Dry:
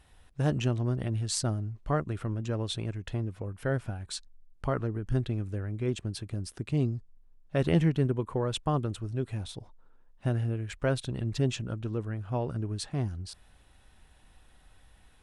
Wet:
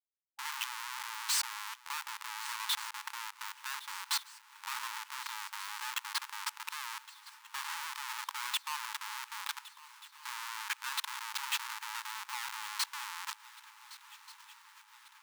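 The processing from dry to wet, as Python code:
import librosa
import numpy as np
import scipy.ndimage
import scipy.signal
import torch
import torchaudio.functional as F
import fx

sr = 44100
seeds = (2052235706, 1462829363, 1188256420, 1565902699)

p1 = fx.law_mismatch(x, sr, coded='A')
p2 = fx.over_compress(p1, sr, threshold_db=-31.0, ratio=-0.5)
p3 = p1 + (p2 * 10.0 ** (2.0 / 20.0))
p4 = fx.tube_stage(p3, sr, drive_db=19.0, bias=0.45)
p5 = fx.schmitt(p4, sr, flips_db=-34.0)
p6 = fx.brickwall_highpass(p5, sr, low_hz=830.0)
y = p6 + fx.echo_swing(p6, sr, ms=1484, ratio=3, feedback_pct=63, wet_db=-18.5, dry=0)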